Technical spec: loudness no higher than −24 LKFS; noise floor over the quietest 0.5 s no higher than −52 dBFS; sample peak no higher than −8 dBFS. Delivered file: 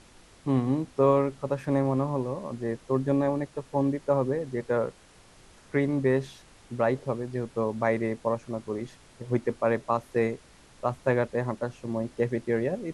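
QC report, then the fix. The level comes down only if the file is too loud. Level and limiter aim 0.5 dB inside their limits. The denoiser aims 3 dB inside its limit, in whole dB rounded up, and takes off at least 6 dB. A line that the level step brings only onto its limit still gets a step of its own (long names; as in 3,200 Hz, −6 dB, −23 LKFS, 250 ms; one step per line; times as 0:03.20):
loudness −28.5 LKFS: in spec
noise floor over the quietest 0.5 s −55 dBFS: in spec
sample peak −10.5 dBFS: in spec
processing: no processing needed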